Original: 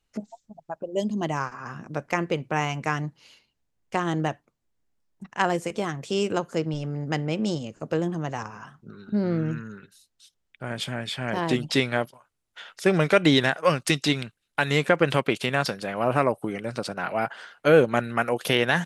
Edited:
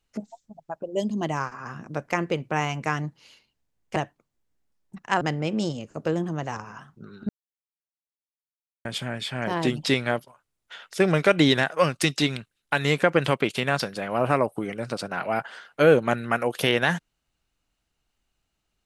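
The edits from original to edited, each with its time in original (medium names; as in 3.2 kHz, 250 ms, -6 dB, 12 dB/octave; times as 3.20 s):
3.96–4.24 s: delete
5.49–7.07 s: delete
9.15–10.71 s: mute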